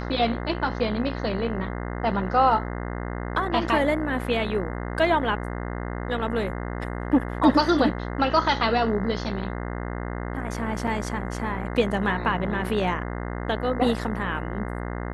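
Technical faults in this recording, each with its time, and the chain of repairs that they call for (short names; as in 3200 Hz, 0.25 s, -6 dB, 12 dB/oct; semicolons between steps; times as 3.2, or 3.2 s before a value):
buzz 60 Hz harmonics 35 -31 dBFS
10.87 gap 4.8 ms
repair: de-hum 60 Hz, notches 35; interpolate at 10.87, 4.8 ms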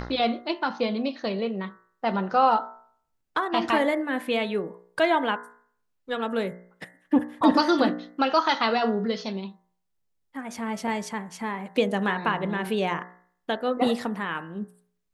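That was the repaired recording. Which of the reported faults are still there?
none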